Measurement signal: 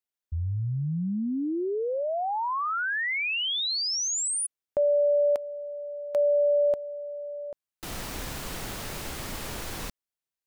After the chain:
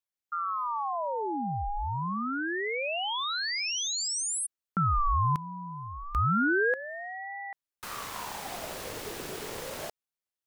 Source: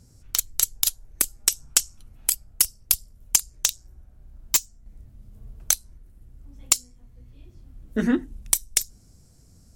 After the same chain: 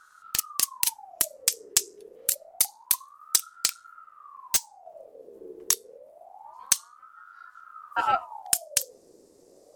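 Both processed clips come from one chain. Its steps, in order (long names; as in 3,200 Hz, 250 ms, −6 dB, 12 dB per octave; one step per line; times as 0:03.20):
ring modulator whose carrier an LFO sweeps 890 Hz, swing 55%, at 0.27 Hz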